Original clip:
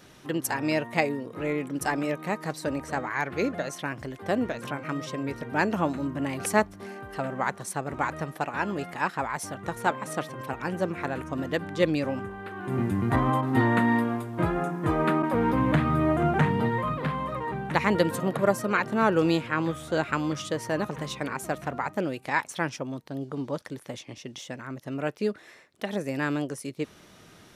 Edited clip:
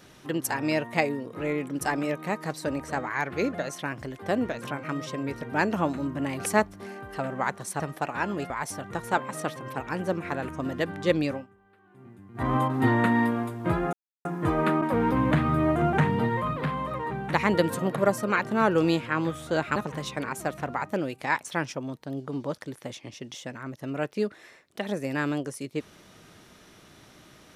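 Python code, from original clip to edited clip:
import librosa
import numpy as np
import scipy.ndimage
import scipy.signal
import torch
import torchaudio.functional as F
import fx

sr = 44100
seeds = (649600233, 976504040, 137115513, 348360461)

y = fx.edit(x, sr, fx.cut(start_s=7.8, length_s=0.39),
    fx.cut(start_s=8.89, length_s=0.34),
    fx.fade_down_up(start_s=12.01, length_s=1.24, db=-22.5, fade_s=0.18),
    fx.insert_silence(at_s=14.66, length_s=0.32),
    fx.cut(start_s=20.17, length_s=0.63), tone=tone)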